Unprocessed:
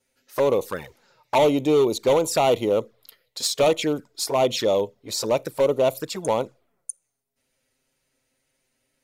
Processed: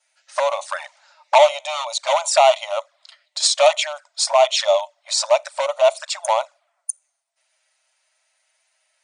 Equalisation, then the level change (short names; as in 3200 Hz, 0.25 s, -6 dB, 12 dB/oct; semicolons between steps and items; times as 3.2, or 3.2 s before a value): brick-wall FIR band-pass 560–9600 Hz; +7.5 dB